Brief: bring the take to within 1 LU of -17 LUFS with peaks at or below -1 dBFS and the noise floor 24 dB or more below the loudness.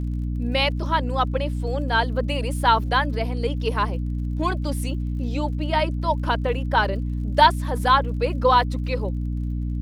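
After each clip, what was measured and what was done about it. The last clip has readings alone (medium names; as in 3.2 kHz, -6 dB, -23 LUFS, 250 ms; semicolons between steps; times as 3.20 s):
tick rate 44 per s; hum 60 Hz; highest harmonic 300 Hz; hum level -23 dBFS; loudness -23.0 LUFS; peak level -3.5 dBFS; loudness target -17.0 LUFS
-> de-click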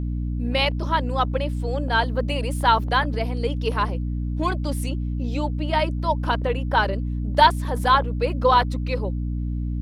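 tick rate 1.7 per s; hum 60 Hz; highest harmonic 300 Hz; hum level -23 dBFS
-> de-hum 60 Hz, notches 5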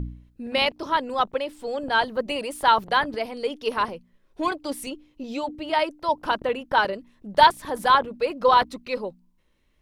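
hum not found; loudness -24.0 LUFS; peak level -3.5 dBFS; loudness target -17.0 LUFS
-> trim +7 dB; peak limiter -1 dBFS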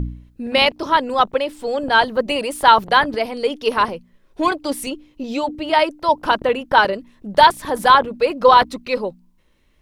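loudness -17.5 LUFS; peak level -1.0 dBFS; noise floor -57 dBFS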